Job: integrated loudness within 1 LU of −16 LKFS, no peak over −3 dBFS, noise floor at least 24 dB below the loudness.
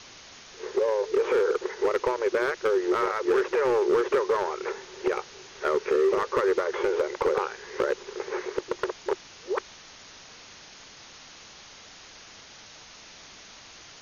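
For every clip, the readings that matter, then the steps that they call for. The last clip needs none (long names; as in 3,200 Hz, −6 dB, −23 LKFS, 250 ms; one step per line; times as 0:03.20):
share of clipped samples 1.3%; peaks flattened at −17.5 dBFS; background noise floor −49 dBFS; target noise floor −51 dBFS; integrated loudness −27.0 LKFS; sample peak −17.5 dBFS; target loudness −16.0 LKFS
→ clipped peaks rebuilt −17.5 dBFS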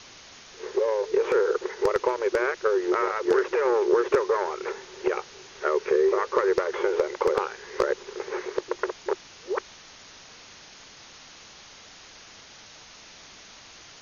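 share of clipped samples 0.0%; background noise floor −49 dBFS; target noise floor −50 dBFS
→ broadband denoise 6 dB, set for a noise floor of −49 dBFS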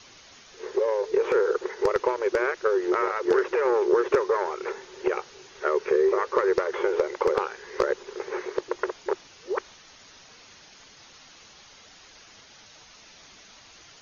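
background noise floor −52 dBFS; integrated loudness −26.0 LKFS; sample peak −8.5 dBFS; target loudness −16.0 LKFS
→ level +10 dB
brickwall limiter −3 dBFS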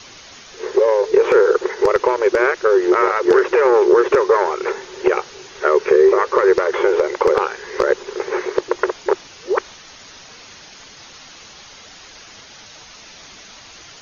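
integrated loudness −16.5 LKFS; sample peak −3.0 dBFS; background noise floor −42 dBFS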